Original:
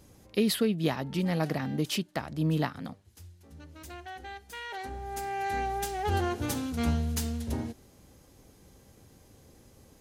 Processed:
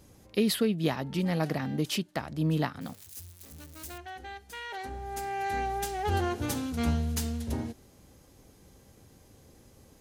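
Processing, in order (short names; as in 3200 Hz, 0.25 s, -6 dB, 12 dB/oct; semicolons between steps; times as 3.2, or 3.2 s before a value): 2.81–3.98 switching spikes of -37.5 dBFS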